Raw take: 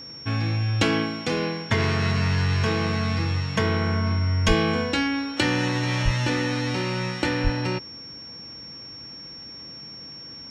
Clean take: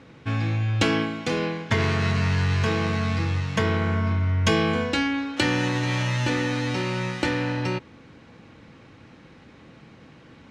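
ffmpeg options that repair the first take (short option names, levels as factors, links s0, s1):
-filter_complex "[0:a]bandreject=f=5500:w=30,asplit=3[s0][s1][s2];[s0]afade=t=out:st=4.47:d=0.02[s3];[s1]highpass=f=140:w=0.5412,highpass=f=140:w=1.3066,afade=t=in:st=4.47:d=0.02,afade=t=out:st=4.59:d=0.02[s4];[s2]afade=t=in:st=4.59:d=0.02[s5];[s3][s4][s5]amix=inputs=3:normalize=0,asplit=3[s6][s7][s8];[s6]afade=t=out:st=6.04:d=0.02[s9];[s7]highpass=f=140:w=0.5412,highpass=f=140:w=1.3066,afade=t=in:st=6.04:d=0.02,afade=t=out:st=6.16:d=0.02[s10];[s8]afade=t=in:st=6.16:d=0.02[s11];[s9][s10][s11]amix=inputs=3:normalize=0,asplit=3[s12][s13][s14];[s12]afade=t=out:st=7.43:d=0.02[s15];[s13]highpass=f=140:w=0.5412,highpass=f=140:w=1.3066,afade=t=in:st=7.43:d=0.02,afade=t=out:st=7.55:d=0.02[s16];[s14]afade=t=in:st=7.55:d=0.02[s17];[s15][s16][s17]amix=inputs=3:normalize=0"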